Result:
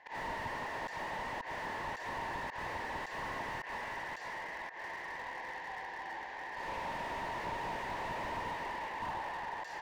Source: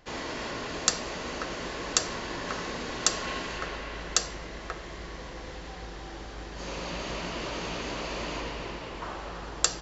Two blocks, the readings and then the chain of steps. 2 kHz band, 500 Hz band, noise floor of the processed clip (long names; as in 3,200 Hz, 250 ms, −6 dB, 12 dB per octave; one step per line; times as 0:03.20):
−2.5 dB, −7.5 dB, −46 dBFS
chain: volume swells 121 ms
pair of resonant band-passes 1,300 Hz, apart 0.98 octaves
slew-rate limiting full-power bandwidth 4.9 Hz
level +10 dB